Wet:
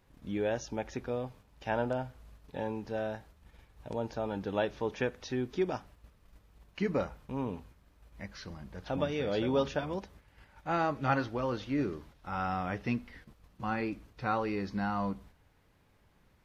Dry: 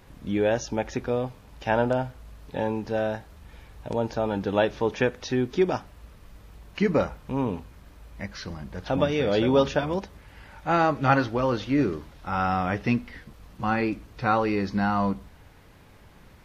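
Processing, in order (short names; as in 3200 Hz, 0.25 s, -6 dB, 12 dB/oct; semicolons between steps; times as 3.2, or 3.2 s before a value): gate -45 dBFS, range -6 dB; gain -8.5 dB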